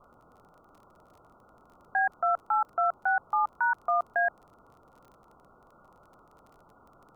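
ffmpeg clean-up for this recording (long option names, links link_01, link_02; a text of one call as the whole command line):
ffmpeg -i in.wav -af "adeclick=threshold=4,afwtdn=0.0045" out.wav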